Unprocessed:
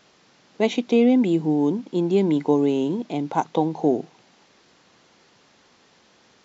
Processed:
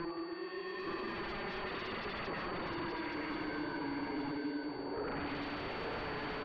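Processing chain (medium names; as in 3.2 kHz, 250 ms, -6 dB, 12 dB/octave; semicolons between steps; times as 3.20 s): block-companded coder 5-bit; high-pass 270 Hz 24 dB/octave; in parallel at -11 dB: decimation with a swept rate 40×, swing 60% 0.4 Hz; on the sum: Paulstretch 13×, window 0.10 s, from 2.07 s; wah-wah 0.37 Hz 430–1800 Hz, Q 2.1; wavefolder -35.5 dBFS; distance through air 400 m; on a send: delay 873 ms -4 dB; on the sum: whistle 4.5 kHz -58 dBFS; trim +1.5 dB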